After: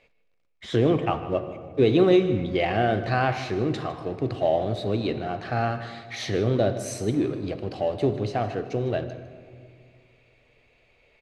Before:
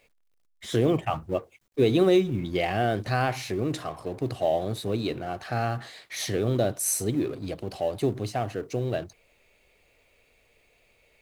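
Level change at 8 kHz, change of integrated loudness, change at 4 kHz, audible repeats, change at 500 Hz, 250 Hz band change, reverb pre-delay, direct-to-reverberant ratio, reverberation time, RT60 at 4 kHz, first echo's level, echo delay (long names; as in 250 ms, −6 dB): −9.5 dB, +2.0 dB, 0.0 dB, 1, +2.5 dB, +2.5 dB, 18 ms, 9.5 dB, 2.2 s, 1.3 s, −16.0 dB, 154 ms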